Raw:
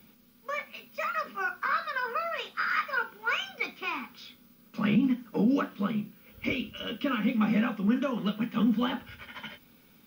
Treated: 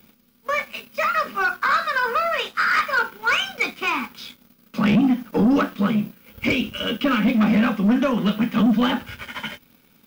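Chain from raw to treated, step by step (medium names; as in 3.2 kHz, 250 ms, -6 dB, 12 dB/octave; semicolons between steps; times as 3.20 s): waveshaping leveller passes 2; trim +3.5 dB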